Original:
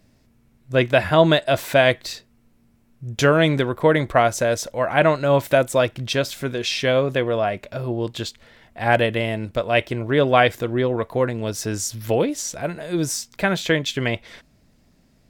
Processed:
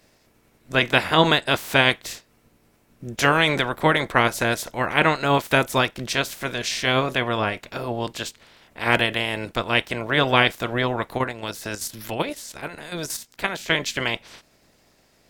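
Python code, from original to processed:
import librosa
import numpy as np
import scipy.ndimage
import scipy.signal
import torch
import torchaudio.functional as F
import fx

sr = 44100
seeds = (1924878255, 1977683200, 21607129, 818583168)

y = fx.spec_clip(x, sr, under_db=18)
y = fx.level_steps(y, sr, step_db=9, at=(11.17, 13.69), fade=0.02)
y = F.gain(torch.from_numpy(y), -2.0).numpy()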